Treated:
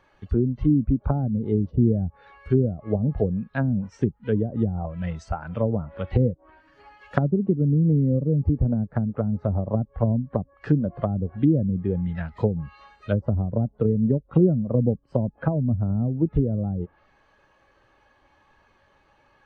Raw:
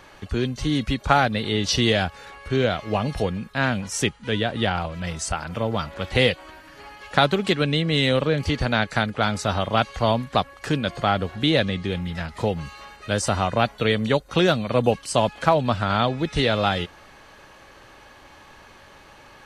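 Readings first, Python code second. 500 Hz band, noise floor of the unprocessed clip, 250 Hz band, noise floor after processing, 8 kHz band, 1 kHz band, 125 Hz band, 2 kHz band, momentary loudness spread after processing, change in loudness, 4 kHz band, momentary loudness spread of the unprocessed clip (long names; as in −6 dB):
−4.0 dB, −49 dBFS, +2.5 dB, −62 dBFS, below −25 dB, −14.0 dB, +4.0 dB, −17.0 dB, 9 LU, −1.5 dB, below −30 dB, 8 LU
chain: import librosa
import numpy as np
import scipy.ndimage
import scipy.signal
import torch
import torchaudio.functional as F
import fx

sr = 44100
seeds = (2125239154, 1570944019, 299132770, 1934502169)

y = fx.env_lowpass_down(x, sr, base_hz=310.0, full_db=-18.0)
y = fx.spectral_expand(y, sr, expansion=1.5)
y = y * 10.0 ** (-1.0 / 20.0)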